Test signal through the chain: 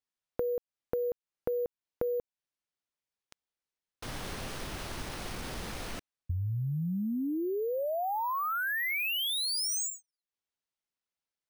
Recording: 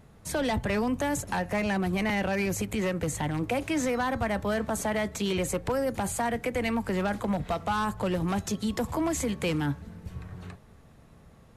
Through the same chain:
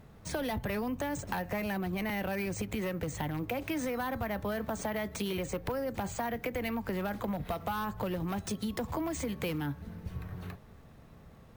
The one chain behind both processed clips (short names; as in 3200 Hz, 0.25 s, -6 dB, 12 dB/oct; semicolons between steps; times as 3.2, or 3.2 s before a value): compressor 6:1, threshold -31 dBFS; careless resampling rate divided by 3×, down filtered, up hold